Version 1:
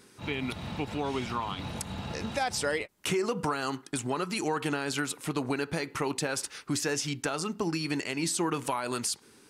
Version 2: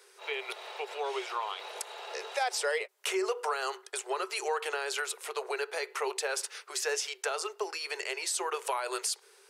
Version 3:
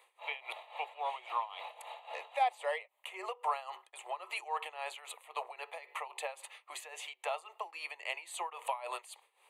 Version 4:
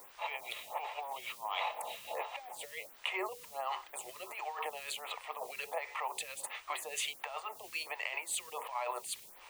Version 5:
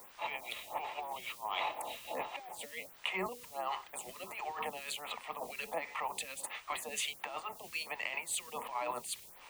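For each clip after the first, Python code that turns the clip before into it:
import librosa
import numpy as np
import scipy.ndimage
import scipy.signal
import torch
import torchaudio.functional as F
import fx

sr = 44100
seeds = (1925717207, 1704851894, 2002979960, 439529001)

y1 = scipy.signal.sosfilt(scipy.signal.cheby1(8, 1.0, 380.0, 'highpass', fs=sr, output='sos'), x)
y2 = fx.high_shelf(y1, sr, hz=3300.0, db=-10.5)
y2 = fx.fixed_phaser(y2, sr, hz=1500.0, stages=6)
y2 = y2 * (1.0 - 0.82 / 2.0 + 0.82 / 2.0 * np.cos(2.0 * np.pi * 3.7 * (np.arange(len(y2)) / sr)))
y2 = F.gain(torch.from_numpy(y2), 4.0).numpy()
y3 = fx.over_compress(y2, sr, threshold_db=-44.0, ratio=-1.0)
y3 = fx.quant_dither(y3, sr, seeds[0], bits=10, dither='triangular')
y3 = fx.stagger_phaser(y3, sr, hz=1.4)
y3 = F.gain(torch.from_numpy(y3), 7.0).numpy()
y4 = fx.octave_divider(y3, sr, octaves=1, level_db=-1.0)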